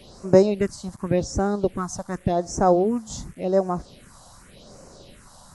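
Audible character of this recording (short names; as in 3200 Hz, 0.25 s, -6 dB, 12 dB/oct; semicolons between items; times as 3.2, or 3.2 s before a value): a quantiser's noise floor 8-bit, dither none; phasing stages 4, 0.88 Hz, lowest notch 380–3400 Hz; AC-3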